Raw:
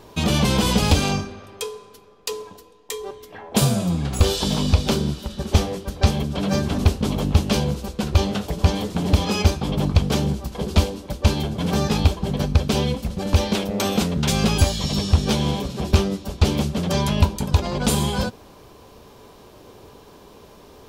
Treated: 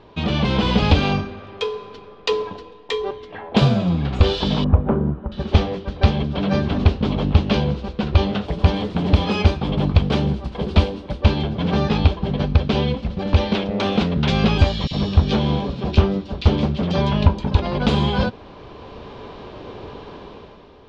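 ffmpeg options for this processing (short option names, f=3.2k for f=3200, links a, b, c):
-filter_complex "[0:a]asettb=1/sr,asplit=3[a][b][c];[a]atrim=end=4.644[d];[b]atrim=start=4.64:end=5.32,asetpts=PTS-STARTPTS,afade=t=in:d=0.004:c=qsin,afade=t=out:st=0.676:d=0.004:c=qsin,lowpass=f=1.4k:w=0.5412,lowpass=f=1.4k:w=1.3066[e];[c]atrim=start=5.316[f];[d][e]acrossfade=d=0.004:c1=hsin:c2=qsin[g];[g][f]acrossfade=d=0.004:c1=qsin:c2=hsin,asettb=1/sr,asplit=3[h][i][j];[h]atrim=end=8.454[k];[i]atrim=start=8.45:end=11.22,asetpts=PTS-STARTPTS,afade=t=in:d=0.004:c=qsin,afade=t=out:st=2.766:d=0.004:c=qsin,equalizer=f=9.3k:t=o:w=0.32:g=15[l];[j]atrim=start=11.216[m];[k][l]acrossfade=d=0.004:c1=hsin:c2=qsin[n];[n][m]acrossfade=d=0.004:c1=qsin:c2=hsin,asettb=1/sr,asplit=3[o][p][q];[o]atrim=end=14.874[r];[p]atrim=start=14.87:end=17.55,asetpts=PTS-STARTPTS,afade=t=in:d=0.004:c=qsin,afade=t=out:st=2.676:d=0.004:c=qsin,acrossover=split=2300[s][t];[s]adelay=40[u];[u][t]amix=inputs=2:normalize=0,atrim=end_sample=118188[v];[q]atrim=start=17.546[w];[r][v]acrossfade=d=0.004:c1=hsin:c2=qsin[x];[x][w]acrossfade=d=0.004:c1=qsin:c2=hsin,lowpass=f=3.9k:w=0.5412,lowpass=f=3.9k:w=1.3066,dynaudnorm=f=110:g=11:m=11.5dB,volume=-1.5dB"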